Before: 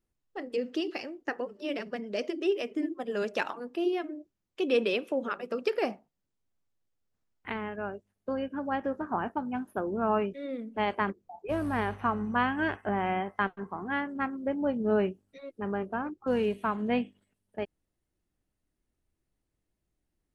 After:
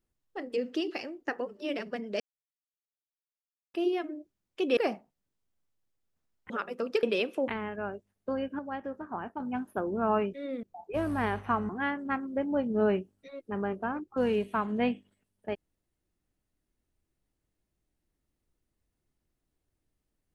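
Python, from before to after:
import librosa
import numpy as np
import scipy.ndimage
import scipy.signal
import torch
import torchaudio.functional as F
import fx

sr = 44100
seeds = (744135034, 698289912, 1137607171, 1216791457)

y = fx.edit(x, sr, fx.silence(start_s=2.2, length_s=1.54),
    fx.swap(start_s=4.77, length_s=0.45, other_s=5.75, other_length_s=1.73),
    fx.clip_gain(start_s=8.59, length_s=0.81, db=-6.0),
    fx.cut(start_s=10.63, length_s=0.55),
    fx.cut(start_s=12.24, length_s=1.55), tone=tone)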